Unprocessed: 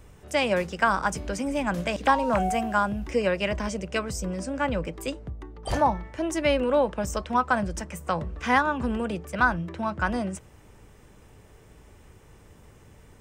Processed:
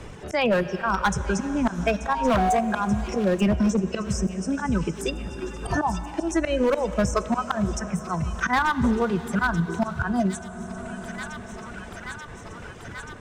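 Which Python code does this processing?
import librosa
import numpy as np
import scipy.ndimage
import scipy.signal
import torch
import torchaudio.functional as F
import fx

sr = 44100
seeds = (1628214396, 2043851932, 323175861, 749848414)

p1 = fx.noise_reduce_blind(x, sr, reduce_db=16)
p2 = scipy.signal.sosfilt(scipy.signal.butter(2, 6400.0, 'lowpass', fs=sr, output='sos'), p1)
p3 = fx.dereverb_blind(p2, sr, rt60_s=0.72)
p4 = fx.graphic_eq(p3, sr, hz=(250, 1000, 2000, 4000), db=(10, -10, -6, -11), at=(3.15, 3.93))
p5 = fx.level_steps(p4, sr, step_db=10)
p6 = p4 + (p5 * librosa.db_to_amplitude(0.0))
p7 = fx.auto_swell(p6, sr, attack_ms=236.0)
p8 = np.clip(p7, -10.0 ** (-20.5 / 20.0), 10.0 ** (-20.5 / 20.0))
p9 = p8 + fx.echo_wet_highpass(p8, sr, ms=883, feedback_pct=64, hz=2100.0, wet_db=-16.0, dry=0)
p10 = fx.rev_plate(p9, sr, seeds[0], rt60_s=3.6, hf_ratio=0.9, predelay_ms=0, drr_db=13.0)
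p11 = fx.band_squash(p10, sr, depth_pct=70)
y = p11 * librosa.db_to_amplitude(5.5)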